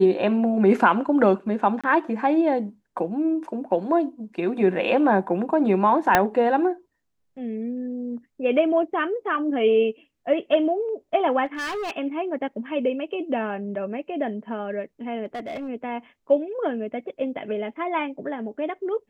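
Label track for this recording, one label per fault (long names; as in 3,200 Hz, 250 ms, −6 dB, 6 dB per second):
1.810000	1.840000	drop-out 26 ms
6.150000	6.150000	click −2 dBFS
11.450000	11.970000	clipping −26.5 dBFS
15.250000	15.690000	clipping −28 dBFS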